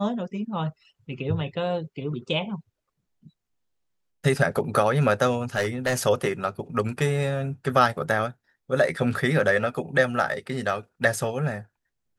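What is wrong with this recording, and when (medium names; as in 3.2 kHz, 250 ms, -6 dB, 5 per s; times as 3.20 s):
5.55–6.06 s: clipped -19 dBFS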